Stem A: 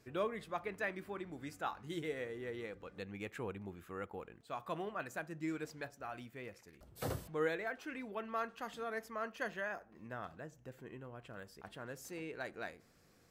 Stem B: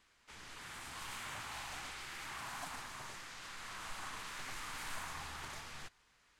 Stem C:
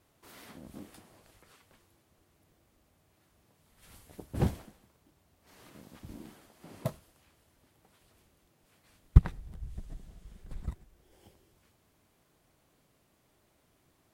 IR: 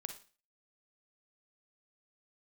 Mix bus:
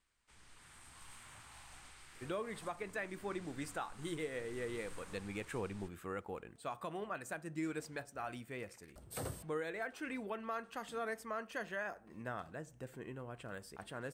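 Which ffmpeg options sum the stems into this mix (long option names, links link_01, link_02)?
-filter_complex "[0:a]adelay=2150,volume=3dB[link_01];[1:a]lowshelf=frequency=130:gain=10,volume=-12.5dB[link_02];[link_01][link_02]amix=inputs=2:normalize=0,equalizer=frequency=8600:width=5.4:gain=13,alimiter=level_in=6.5dB:limit=-24dB:level=0:latency=1:release=311,volume=-6.5dB"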